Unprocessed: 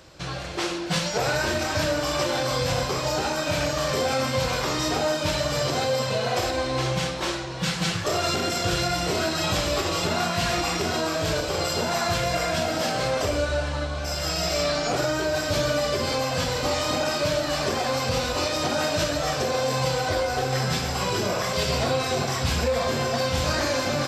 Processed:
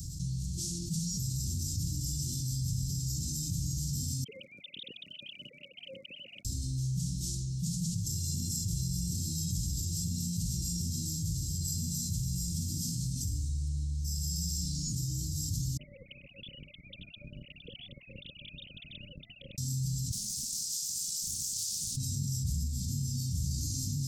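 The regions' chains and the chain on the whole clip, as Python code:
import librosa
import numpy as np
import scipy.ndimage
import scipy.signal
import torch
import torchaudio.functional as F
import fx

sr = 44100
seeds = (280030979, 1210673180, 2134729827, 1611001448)

y = fx.chain(x, sr, fx.sine_speech(),
    fx.highpass(hz=230.0, slope=12), at=(4.24, 6.45))
y = fx.chain(y, sr, fx.sine_speech(),
    fx.lowpass(hz=2500.0, slope=12), at=(15.77, 19.58))
y = fx.chain(y, sr, fx.steep_highpass(hz=580.0, slope=96),
    fx.doppler_dist(depth_ms=0.24), at=(20.11, 21.97))
y = scipy.signal.sosfilt(scipy.signal.cheby2(4, 80, [610.0, 1700.0], 'bandstop', fs=sr, output='sos'), y)
y = fx.peak_eq(y, sr, hz=280.0, db=7.0, octaves=1.4)
y = fx.env_flatten(y, sr, amount_pct=70)
y = y * 10.0 ** (-8.5 / 20.0)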